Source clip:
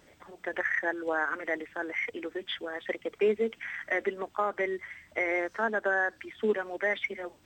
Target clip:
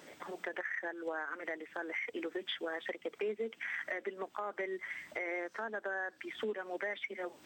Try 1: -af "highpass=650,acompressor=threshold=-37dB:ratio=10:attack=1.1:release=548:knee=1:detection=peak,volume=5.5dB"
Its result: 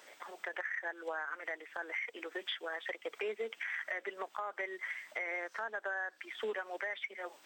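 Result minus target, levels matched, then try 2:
250 Hz band -8.0 dB
-af "highpass=200,acompressor=threshold=-37dB:ratio=10:attack=1.1:release=548:knee=1:detection=peak,volume=5.5dB"

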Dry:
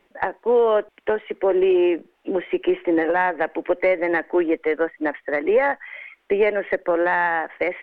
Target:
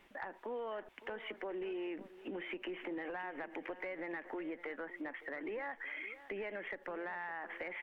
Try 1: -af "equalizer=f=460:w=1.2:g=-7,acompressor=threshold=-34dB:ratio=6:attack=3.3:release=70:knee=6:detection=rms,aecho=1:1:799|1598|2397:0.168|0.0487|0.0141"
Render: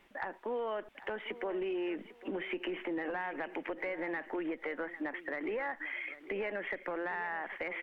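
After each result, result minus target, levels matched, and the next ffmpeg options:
echo 0.238 s late; compressor: peak gain reduction -5.5 dB
-af "equalizer=f=460:w=1.2:g=-7,acompressor=threshold=-34dB:ratio=6:attack=3.3:release=70:knee=6:detection=rms,aecho=1:1:561|1122|1683:0.168|0.0487|0.0141"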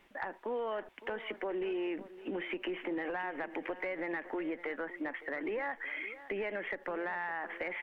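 compressor: peak gain reduction -5.5 dB
-af "equalizer=f=460:w=1.2:g=-7,acompressor=threshold=-40.5dB:ratio=6:attack=3.3:release=70:knee=6:detection=rms,aecho=1:1:561|1122|1683:0.168|0.0487|0.0141"

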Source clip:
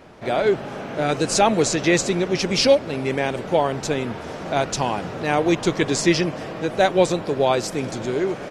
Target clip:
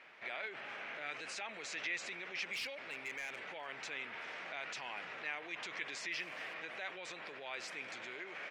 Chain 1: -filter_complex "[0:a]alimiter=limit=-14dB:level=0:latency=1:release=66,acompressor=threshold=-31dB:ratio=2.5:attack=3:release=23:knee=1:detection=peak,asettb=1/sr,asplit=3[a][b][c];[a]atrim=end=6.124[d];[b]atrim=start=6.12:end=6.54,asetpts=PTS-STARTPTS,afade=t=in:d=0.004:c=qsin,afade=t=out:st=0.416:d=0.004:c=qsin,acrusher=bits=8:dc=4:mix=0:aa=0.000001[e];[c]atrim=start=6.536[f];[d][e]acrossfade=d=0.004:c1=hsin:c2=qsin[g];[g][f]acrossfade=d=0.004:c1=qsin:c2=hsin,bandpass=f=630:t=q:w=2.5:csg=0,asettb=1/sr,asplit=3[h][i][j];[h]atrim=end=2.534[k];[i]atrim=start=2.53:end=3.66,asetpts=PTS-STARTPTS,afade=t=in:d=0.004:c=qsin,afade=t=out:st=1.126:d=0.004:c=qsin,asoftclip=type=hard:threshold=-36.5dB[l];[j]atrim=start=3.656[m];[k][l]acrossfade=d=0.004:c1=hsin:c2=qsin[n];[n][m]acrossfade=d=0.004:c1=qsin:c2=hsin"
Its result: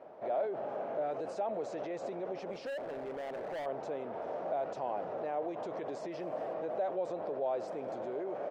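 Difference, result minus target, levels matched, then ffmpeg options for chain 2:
2000 Hz band -16.5 dB
-filter_complex "[0:a]alimiter=limit=-14dB:level=0:latency=1:release=66,acompressor=threshold=-31dB:ratio=2.5:attack=3:release=23:knee=1:detection=peak,asettb=1/sr,asplit=3[a][b][c];[a]atrim=end=6.124[d];[b]atrim=start=6.12:end=6.54,asetpts=PTS-STARTPTS,afade=t=in:d=0.004:c=qsin,afade=t=out:st=0.416:d=0.004:c=qsin,acrusher=bits=8:dc=4:mix=0:aa=0.000001[e];[c]atrim=start=6.536[f];[d][e]acrossfade=d=0.004:c1=hsin:c2=qsin[g];[g][f]acrossfade=d=0.004:c1=qsin:c2=hsin,bandpass=f=2.2k:t=q:w=2.5:csg=0,asettb=1/sr,asplit=3[h][i][j];[h]atrim=end=2.534[k];[i]atrim=start=2.53:end=3.66,asetpts=PTS-STARTPTS,afade=t=in:d=0.004:c=qsin,afade=t=out:st=1.126:d=0.004:c=qsin,asoftclip=type=hard:threshold=-36.5dB[l];[j]atrim=start=3.656[m];[k][l]acrossfade=d=0.004:c1=hsin:c2=qsin[n];[n][m]acrossfade=d=0.004:c1=qsin:c2=hsin"

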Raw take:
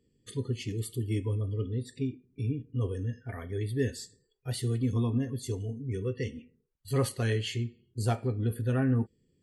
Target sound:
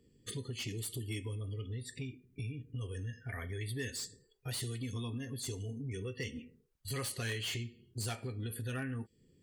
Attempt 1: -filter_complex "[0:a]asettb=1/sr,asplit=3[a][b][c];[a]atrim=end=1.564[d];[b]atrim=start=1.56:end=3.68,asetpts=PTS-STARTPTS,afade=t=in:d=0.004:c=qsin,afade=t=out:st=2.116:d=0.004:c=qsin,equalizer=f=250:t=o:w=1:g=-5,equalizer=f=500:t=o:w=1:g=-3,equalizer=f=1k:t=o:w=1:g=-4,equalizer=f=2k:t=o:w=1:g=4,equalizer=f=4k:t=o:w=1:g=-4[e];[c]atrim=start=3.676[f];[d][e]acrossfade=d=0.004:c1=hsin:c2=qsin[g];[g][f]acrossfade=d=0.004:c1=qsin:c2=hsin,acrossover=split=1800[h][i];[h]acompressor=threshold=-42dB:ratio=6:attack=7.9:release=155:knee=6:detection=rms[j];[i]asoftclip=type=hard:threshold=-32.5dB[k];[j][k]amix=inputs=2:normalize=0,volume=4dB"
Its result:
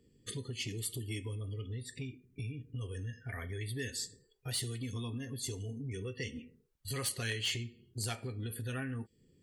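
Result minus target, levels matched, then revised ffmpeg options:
hard clip: distortion -10 dB
-filter_complex "[0:a]asettb=1/sr,asplit=3[a][b][c];[a]atrim=end=1.564[d];[b]atrim=start=1.56:end=3.68,asetpts=PTS-STARTPTS,afade=t=in:d=0.004:c=qsin,afade=t=out:st=2.116:d=0.004:c=qsin,equalizer=f=250:t=o:w=1:g=-5,equalizer=f=500:t=o:w=1:g=-3,equalizer=f=1k:t=o:w=1:g=-4,equalizer=f=2k:t=o:w=1:g=4,equalizer=f=4k:t=o:w=1:g=-4[e];[c]atrim=start=3.676[f];[d][e]acrossfade=d=0.004:c1=hsin:c2=qsin[g];[g][f]acrossfade=d=0.004:c1=qsin:c2=hsin,acrossover=split=1800[h][i];[h]acompressor=threshold=-42dB:ratio=6:attack=7.9:release=155:knee=6:detection=rms[j];[i]asoftclip=type=hard:threshold=-40.5dB[k];[j][k]amix=inputs=2:normalize=0,volume=4dB"

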